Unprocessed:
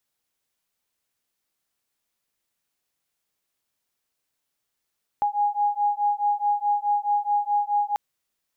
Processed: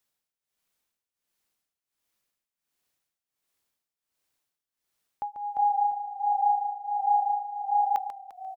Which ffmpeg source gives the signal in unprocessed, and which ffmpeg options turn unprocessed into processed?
-f lavfi -i "aevalsrc='0.0668*(sin(2*PI*822*t)+sin(2*PI*826.7*t))':duration=2.74:sample_rate=44100"
-filter_complex "[0:a]asplit=2[link_01][link_02];[link_02]asplit=5[link_03][link_04][link_05][link_06][link_07];[link_03]adelay=347,afreqshift=-31,volume=-8dB[link_08];[link_04]adelay=694,afreqshift=-62,volume=-15.1dB[link_09];[link_05]adelay=1041,afreqshift=-93,volume=-22.3dB[link_10];[link_06]adelay=1388,afreqshift=-124,volume=-29.4dB[link_11];[link_07]adelay=1735,afreqshift=-155,volume=-36.5dB[link_12];[link_08][link_09][link_10][link_11][link_12]amix=inputs=5:normalize=0[link_13];[link_01][link_13]amix=inputs=2:normalize=0,tremolo=f=1.4:d=0.85,asplit=2[link_14][link_15];[link_15]aecho=0:1:141:0.316[link_16];[link_14][link_16]amix=inputs=2:normalize=0"

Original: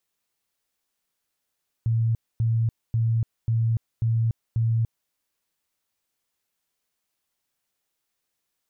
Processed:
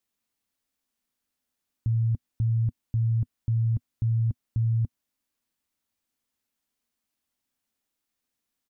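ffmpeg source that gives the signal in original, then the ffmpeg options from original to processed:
-f lavfi -i "aevalsrc='0.112*sin(2*PI*114*mod(t,0.54))*lt(mod(t,0.54),33/114)':duration=3.24:sample_rate=44100"
-af "firequalizer=gain_entry='entry(100,0);entry(150,-5);entry(240,7);entry(360,-4)':delay=0.05:min_phase=1"

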